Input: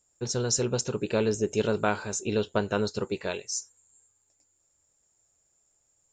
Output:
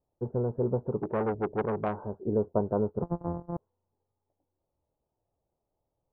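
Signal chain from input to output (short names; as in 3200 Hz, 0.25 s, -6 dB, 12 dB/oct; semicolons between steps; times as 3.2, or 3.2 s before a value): 3.02–3.57 sample sorter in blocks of 256 samples; steep low-pass 1000 Hz 36 dB/oct; 0.99–1.99 core saturation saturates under 850 Hz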